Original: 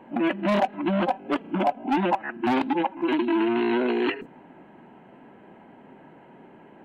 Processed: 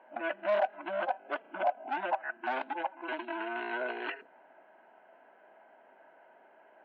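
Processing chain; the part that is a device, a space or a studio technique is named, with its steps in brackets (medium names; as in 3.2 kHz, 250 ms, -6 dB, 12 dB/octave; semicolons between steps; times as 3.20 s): tin-can telephone (band-pass 660–3000 Hz; small resonant body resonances 640/1500 Hz, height 11 dB, ringing for 30 ms); trim -8 dB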